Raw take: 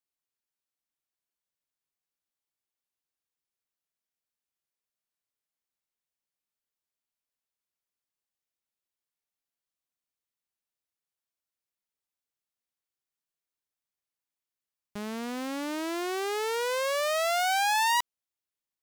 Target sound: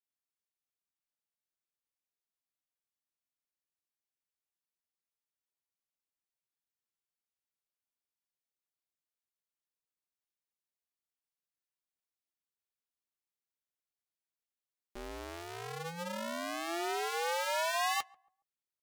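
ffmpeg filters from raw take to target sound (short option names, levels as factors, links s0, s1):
-filter_complex "[0:a]flanger=delay=3.1:depth=8.8:regen=-56:speed=0.12:shape=triangular,aeval=exprs='val(0)*sin(2*PI*170*n/s)':c=same,asplit=2[s0][s1];[s1]adelay=139,lowpass=f=900:p=1,volume=0.0708,asplit=2[s2][s3];[s3]adelay=139,lowpass=f=900:p=1,volume=0.38,asplit=2[s4][s5];[s5]adelay=139,lowpass=f=900:p=1,volume=0.38[s6];[s2][s4][s6]amix=inputs=3:normalize=0[s7];[s0][s7]amix=inputs=2:normalize=0"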